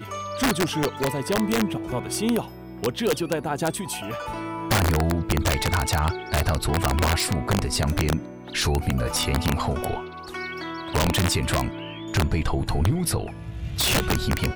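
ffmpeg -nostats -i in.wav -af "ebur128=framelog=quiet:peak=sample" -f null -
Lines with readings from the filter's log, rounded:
Integrated loudness:
  I:         -24.7 LUFS
  Threshold: -34.8 LUFS
Loudness range:
  LRA:         2.6 LU
  Threshold: -44.9 LUFS
  LRA low:   -26.0 LUFS
  LRA high:  -23.5 LUFS
Sample peak:
  Peak:      -14.8 dBFS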